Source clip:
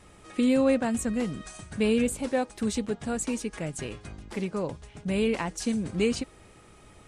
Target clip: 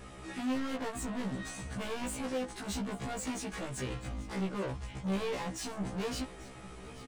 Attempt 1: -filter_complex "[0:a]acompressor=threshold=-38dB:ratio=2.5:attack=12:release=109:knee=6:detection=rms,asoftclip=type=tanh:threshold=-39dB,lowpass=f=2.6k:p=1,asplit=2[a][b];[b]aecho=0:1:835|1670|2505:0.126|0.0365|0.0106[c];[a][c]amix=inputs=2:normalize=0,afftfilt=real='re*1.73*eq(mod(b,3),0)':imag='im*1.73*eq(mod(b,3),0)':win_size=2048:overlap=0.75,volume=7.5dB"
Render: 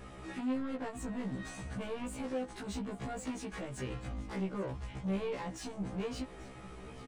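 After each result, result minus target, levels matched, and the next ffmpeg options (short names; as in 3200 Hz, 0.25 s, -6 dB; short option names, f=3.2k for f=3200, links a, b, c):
compressor: peak gain reduction +13 dB; 8000 Hz band -5.0 dB
-filter_complex "[0:a]asoftclip=type=tanh:threshold=-39dB,lowpass=f=2.6k:p=1,asplit=2[a][b];[b]aecho=0:1:835|1670|2505:0.126|0.0365|0.0106[c];[a][c]amix=inputs=2:normalize=0,afftfilt=real='re*1.73*eq(mod(b,3),0)':imag='im*1.73*eq(mod(b,3),0)':win_size=2048:overlap=0.75,volume=7.5dB"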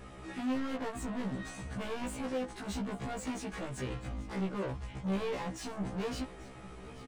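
8000 Hz band -5.0 dB
-filter_complex "[0:a]asoftclip=type=tanh:threshold=-39dB,lowpass=f=6k:p=1,asplit=2[a][b];[b]aecho=0:1:835|1670|2505:0.126|0.0365|0.0106[c];[a][c]amix=inputs=2:normalize=0,afftfilt=real='re*1.73*eq(mod(b,3),0)':imag='im*1.73*eq(mod(b,3),0)':win_size=2048:overlap=0.75,volume=7.5dB"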